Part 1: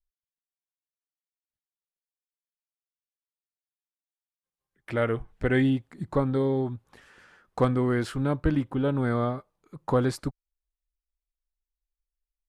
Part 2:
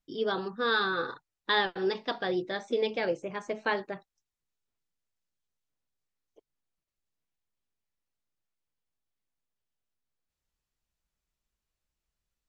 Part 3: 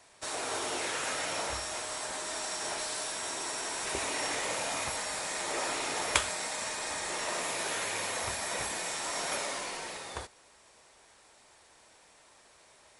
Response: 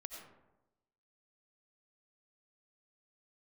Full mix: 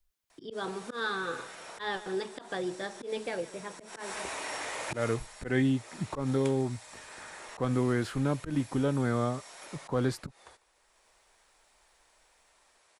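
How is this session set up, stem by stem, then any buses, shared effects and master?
−2.0 dB, 0.00 s, no send, no echo send, no processing
−6.0 dB, 0.30 s, no send, echo send −19.5 dB, automatic ducking −12 dB, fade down 1.70 s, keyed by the first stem
0:03.84 −16.5 dB → 0:04.05 −5 dB → 0:05.01 −5 dB → 0:05.27 −16.5 dB, 0.30 s, no send, echo send −24 dB, low-shelf EQ 320 Hz −11 dB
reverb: not used
echo: repeating echo 149 ms, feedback 56%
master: volume swells 150 ms; multiband upward and downward compressor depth 40%

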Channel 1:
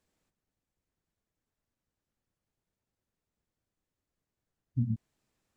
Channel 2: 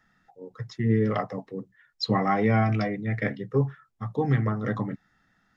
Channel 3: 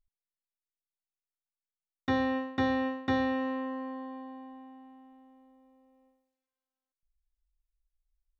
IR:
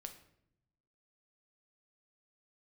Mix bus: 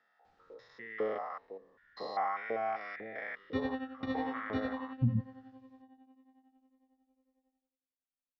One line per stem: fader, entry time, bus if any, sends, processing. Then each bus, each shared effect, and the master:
+2.5 dB, 0.25 s, send −15.5 dB, no processing
−8.0 dB, 0.00 s, no send, spectrum averaged block by block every 200 ms; auto-filter high-pass saw up 2 Hz 460–1,600 Hz
−7.5 dB, 1.45 s, send −5 dB, notch filter 1,000 Hz, Q 5.6; shaped tremolo triangle 11 Hz, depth 90%; phaser whose notches keep moving one way falling 1.9 Hz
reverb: on, RT60 0.75 s, pre-delay 6 ms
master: low-pass filter 4,900 Hz 24 dB per octave; speech leveller within 3 dB 0.5 s

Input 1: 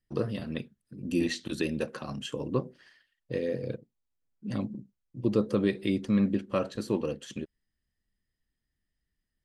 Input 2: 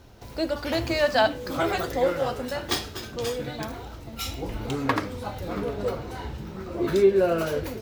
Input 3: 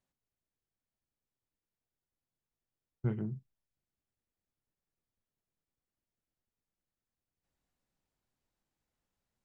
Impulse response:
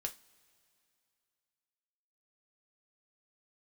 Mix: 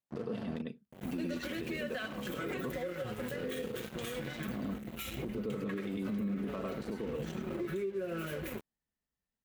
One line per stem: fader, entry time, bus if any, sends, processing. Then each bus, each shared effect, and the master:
+1.5 dB, 0.00 s, bus A, no send, echo send −8.5 dB, high-shelf EQ 2,200 Hz −9.5 dB; comb filter 4.5 ms, depth 41%
+2.5 dB, 0.80 s, bus A, no send, no echo send, phaser with its sweep stopped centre 2,100 Hz, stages 4; comb filter 5.4 ms, depth 63%
−9.0 dB, 0.00 s, no bus, no send, no echo send, no processing
bus A: 0.0 dB, dead-zone distortion −38.5 dBFS; downward compressor 20 to 1, threshold −31 dBFS, peak gain reduction 22 dB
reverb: not used
echo: single-tap delay 101 ms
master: high-pass filter 100 Hz 6 dB per octave; brickwall limiter −28.5 dBFS, peak gain reduction 10 dB

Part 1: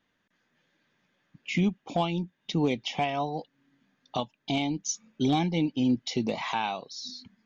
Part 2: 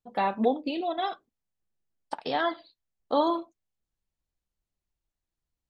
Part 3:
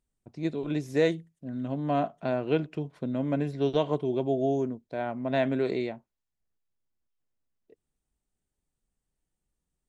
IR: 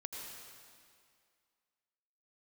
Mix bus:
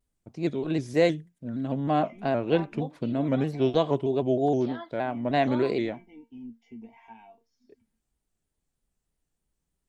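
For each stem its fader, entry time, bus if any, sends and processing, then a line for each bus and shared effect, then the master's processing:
−9.5 dB, 0.55 s, no send, bass and treble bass +12 dB, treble −14 dB; phaser with its sweep stopped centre 820 Hz, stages 8; tuned comb filter 230 Hz, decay 0.2 s, harmonics all, mix 90%
−11.0 dB, 2.35 s, no send, expander for the loud parts 1.5 to 1, over −33 dBFS
+2.5 dB, 0.00 s, no send, pitch modulation by a square or saw wave square 3.2 Hz, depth 100 cents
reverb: not used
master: no processing

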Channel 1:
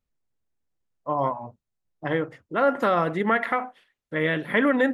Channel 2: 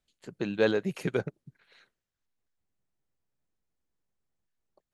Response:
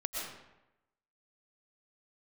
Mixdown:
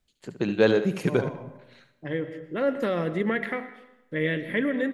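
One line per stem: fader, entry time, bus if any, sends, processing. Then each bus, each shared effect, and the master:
−4.5 dB, 0.00 s, send −12.5 dB, no echo send, flat-topped bell 980 Hz −10 dB 1.3 octaves; automatic ducking −6 dB, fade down 0.35 s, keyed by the second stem
+2.5 dB, 0.00 s, send −17.5 dB, echo send −9.5 dB, no processing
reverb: on, RT60 0.95 s, pre-delay 80 ms
echo: single-tap delay 72 ms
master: low-shelf EQ 440 Hz +3 dB

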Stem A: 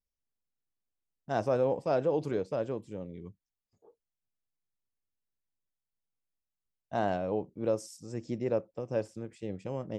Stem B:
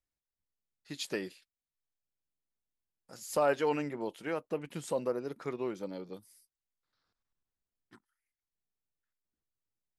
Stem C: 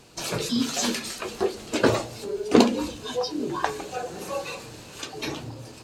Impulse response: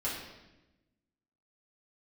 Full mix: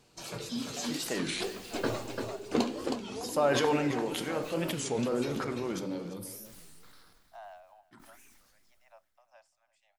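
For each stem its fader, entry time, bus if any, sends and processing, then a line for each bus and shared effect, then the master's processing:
−15.5 dB, 0.40 s, no send, echo send −21.5 dB, Butterworth high-pass 630 Hz 96 dB per octave
−1.5 dB, 0.00 s, send −10.5 dB, echo send −13 dB, level that may fall only so fast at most 23 dB per second
−12.5 dB, 0.00 s, send −14 dB, echo send −4.5 dB, no processing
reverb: on, RT60 1.0 s, pre-delay 4 ms
echo: repeating echo 342 ms, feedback 27%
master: wow of a warped record 33 1/3 rpm, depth 250 cents

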